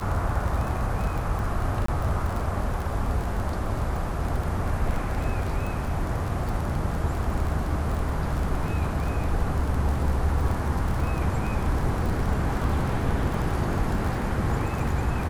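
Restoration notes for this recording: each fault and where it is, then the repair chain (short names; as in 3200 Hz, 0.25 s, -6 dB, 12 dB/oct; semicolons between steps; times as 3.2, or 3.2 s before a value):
crackle 27/s -28 dBFS
1.86–1.88 gap 24 ms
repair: de-click; interpolate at 1.86, 24 ms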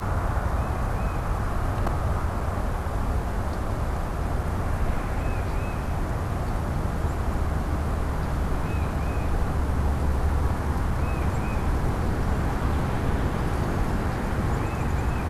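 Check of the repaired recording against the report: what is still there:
none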